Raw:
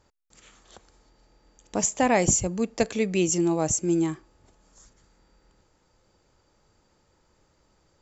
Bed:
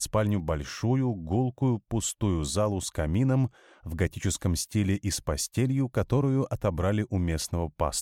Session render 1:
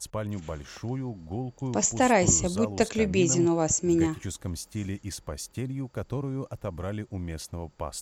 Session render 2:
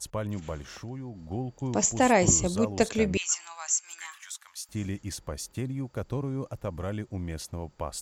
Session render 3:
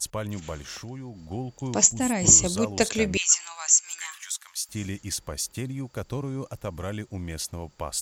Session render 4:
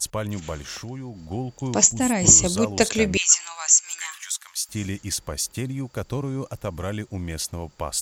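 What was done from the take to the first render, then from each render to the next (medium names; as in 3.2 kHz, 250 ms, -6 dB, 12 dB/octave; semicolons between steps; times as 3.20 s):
add bed -7 dB
0.64–1.22 s: compression 2:1, threshold -38 dBFS; 3.17–4.69 s: inverse Chebyshev high-pass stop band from 430 Hz, stop band 50 dB
1.87–2.25 s: time-frequency box 300–7500 Hz -11 dB; treble shelf 2.1 kHz +9 dB
trim +3.5 dB; peak limiter -2 dBFS, peak gain reduction 2.5 dB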